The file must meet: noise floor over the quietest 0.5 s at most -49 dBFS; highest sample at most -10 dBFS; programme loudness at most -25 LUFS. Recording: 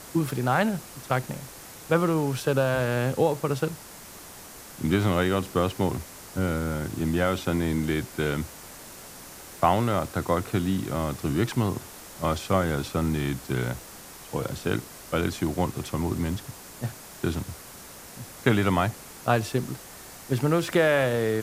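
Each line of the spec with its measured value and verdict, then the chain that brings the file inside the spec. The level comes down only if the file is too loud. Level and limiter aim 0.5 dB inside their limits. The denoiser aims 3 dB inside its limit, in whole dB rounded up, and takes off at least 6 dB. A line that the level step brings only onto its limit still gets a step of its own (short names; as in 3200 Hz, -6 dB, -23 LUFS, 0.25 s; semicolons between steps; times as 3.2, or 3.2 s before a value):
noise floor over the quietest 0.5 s -44 dBFS: fail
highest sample -5.0 dBFS: fail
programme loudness -27.0 LUFS: OK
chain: denoiser 8 dB, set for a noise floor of -44 dBFS; limiter -10.5 dBFS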